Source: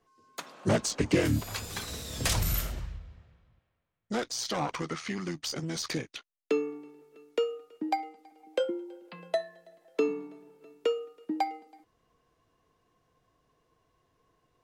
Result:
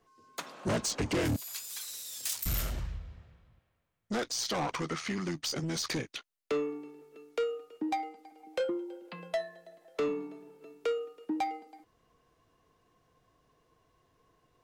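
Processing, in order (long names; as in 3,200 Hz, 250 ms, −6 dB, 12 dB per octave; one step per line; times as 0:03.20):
soft clipping −28 dBFS, distortion −9 dB
0:01.36–0:02.46: first difference
level +2 dB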